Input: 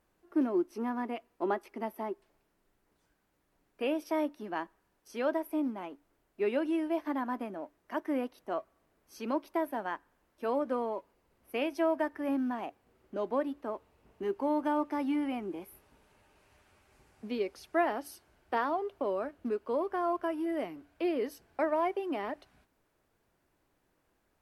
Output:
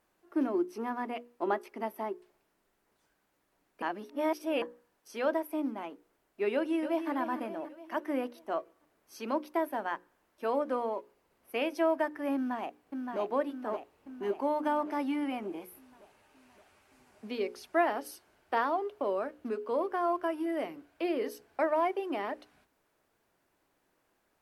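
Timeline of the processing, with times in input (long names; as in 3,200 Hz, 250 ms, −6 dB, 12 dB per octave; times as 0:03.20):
0:03.82–0:04.62: reverse
0:06.53–0:07.10: delay throw 290 ms, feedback 55%, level −9 dB
0:12.35–0:13.19: delay throw 570 ms, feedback 60%, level −4.5 dB
whole clip: low-shelf EQ 150 Hz −10.5 dB; mains-hum notches 60/120/180/240/300/360/420/480/540 Hz; level +2 dB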